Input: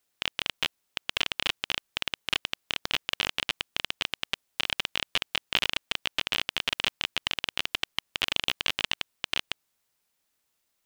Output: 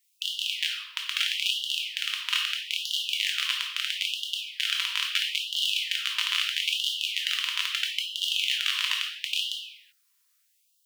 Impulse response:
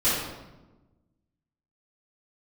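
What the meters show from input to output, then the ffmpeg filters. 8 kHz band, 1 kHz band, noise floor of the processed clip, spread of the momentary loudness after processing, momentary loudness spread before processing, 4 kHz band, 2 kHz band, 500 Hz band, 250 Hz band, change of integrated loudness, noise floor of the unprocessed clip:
+5.5 dB, -4.5 dB, -69 dBFS, 4 LU, 5 LU, +4.0 dB, +1.0 dB, under -40 dB, under -40 dB, +3.0 dB, -77 dBFS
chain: -filter_complex "[0:a]asplit=2[a][b];[1:a]atrim=start_sample=2205,afade=t=out:st=0.45:d=0.01,atrim=end_sample=20286,highshelf=f=4k:g=11.5[c];[b][c]afir=irnorm=-1:irlink=0,volume=-16.5dB[d];[a][d]amix=inputs=2:normalize=0,alimiter=level_in=8dB:limit=-1dB:release=50:level=0:latency=1,afftfilt=real='re*gte(b*sr/1024,910*pow(2800/910,0.5+0.5*sin(2*PI*0.76*pts/sr)))':imag='im*gte(b*sr/1024,910*pow(2800/910,0.5+0.5*sin(2*PI*0.76*pts/sr)))':win_size=1024:overlap=0.75,volume=-7dB"

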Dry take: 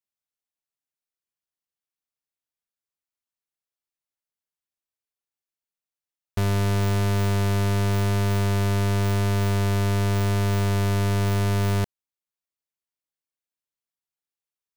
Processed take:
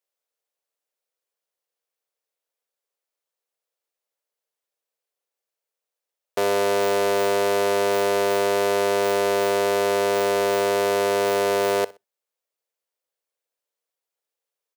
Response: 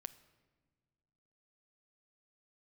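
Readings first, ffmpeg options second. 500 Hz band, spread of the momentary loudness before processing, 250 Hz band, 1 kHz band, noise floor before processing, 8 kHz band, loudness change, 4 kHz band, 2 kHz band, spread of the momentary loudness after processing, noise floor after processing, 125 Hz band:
+11.0 dB, 1 LU, -4.5 dB, +7.5 dB, under -85 dBFS, +4.5 dB, +2.0 dB, +4.5 dB, +5.5 dB, 1 LU, under -85 dBFS, -21.5 dB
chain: -filter_complex "[0:a]highpass=f=490:t=q:w=3.5,aecho=1:1:62|124:0.0794|0.0246,asplit=2[a][b];[1:a]atrim=start_sample=2205,atrim=end_sample=3528[c];[b][c]afir=irnorm=-1:irlink=0,volume=1dB[d];[a][d]amix=inputs=2:normalize=0"

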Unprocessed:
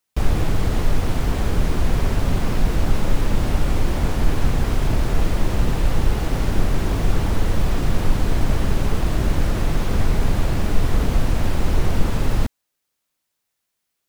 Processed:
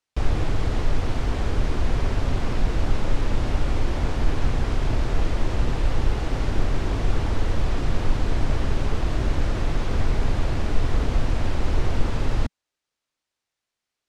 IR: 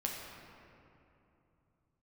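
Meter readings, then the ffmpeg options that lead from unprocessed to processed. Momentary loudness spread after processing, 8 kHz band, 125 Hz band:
1 LU, -7.5 dB, -3.5 dB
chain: -af "lowpass=6.4k,equalizer=f=180:t=o:w=0.38:g=-7,volume=-3dB"

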